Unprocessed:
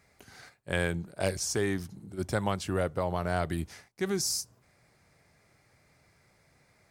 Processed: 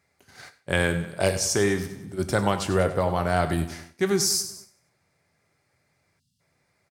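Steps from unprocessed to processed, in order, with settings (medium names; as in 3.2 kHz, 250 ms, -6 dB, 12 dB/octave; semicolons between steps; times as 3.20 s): feedback delay 96 ms, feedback 49%, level -13 dB; gate -51 dBFS, range -12 dB; bass shelf 76 Hz -8 dB; gated-style reverb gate 160 ms falling, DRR 9.5 dB; spectral selection erased 6.19–6.40 s, 270–2700 Hz; trim +6.5 dB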